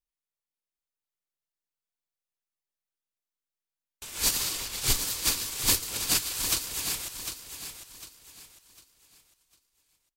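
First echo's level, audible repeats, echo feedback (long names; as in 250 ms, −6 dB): −9.0 dB, 3, 33%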